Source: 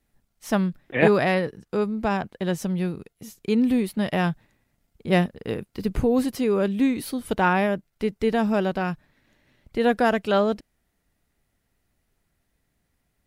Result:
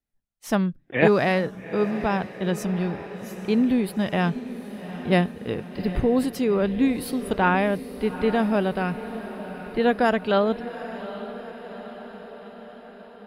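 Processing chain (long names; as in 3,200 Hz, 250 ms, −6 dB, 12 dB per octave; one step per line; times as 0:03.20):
noise reduction from a noise print of the clip's start 17 dB
feedback delay with all-pass diffusion 808 ms, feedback 61%, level −13 dB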